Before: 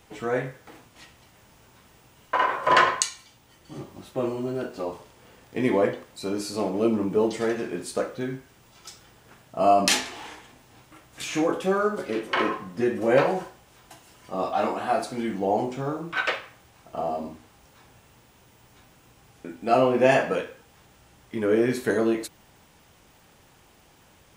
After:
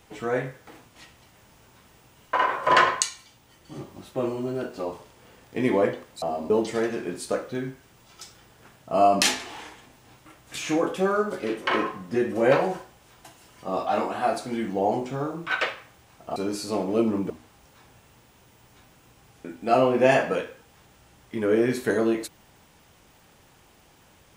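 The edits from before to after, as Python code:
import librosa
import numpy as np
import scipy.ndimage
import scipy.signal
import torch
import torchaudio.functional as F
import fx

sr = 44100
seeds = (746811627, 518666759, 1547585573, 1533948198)

y = fx.edit(x, sr, fx.swap(start_s=6.22, length_s=0.94, other_s=17.02, other_length_s=0.28), tone=tone)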